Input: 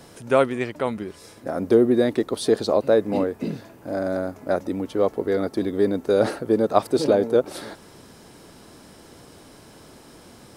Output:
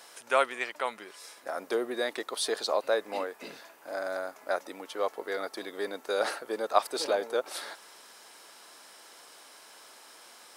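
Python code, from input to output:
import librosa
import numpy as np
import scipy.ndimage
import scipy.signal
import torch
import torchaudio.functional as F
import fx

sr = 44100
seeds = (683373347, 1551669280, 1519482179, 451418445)

y = scipy.signal.sosfilt(scipy.signal.butter(2, 900.0, 'highpass', fs=sr, output='sos'), x)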